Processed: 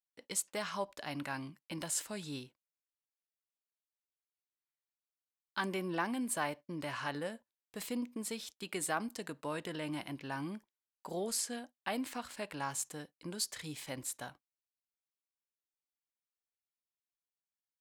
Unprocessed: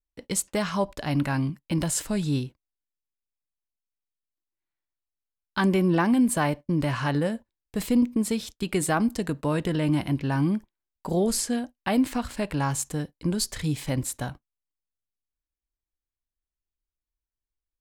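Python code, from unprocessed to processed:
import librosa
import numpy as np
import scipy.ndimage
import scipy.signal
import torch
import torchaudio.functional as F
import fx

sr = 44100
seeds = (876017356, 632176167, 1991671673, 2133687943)

y = fx.highpass(x, sr, hz=680.0, slope=6)
y = F.gain(torch.from_numpy(y), -7.5).numpy()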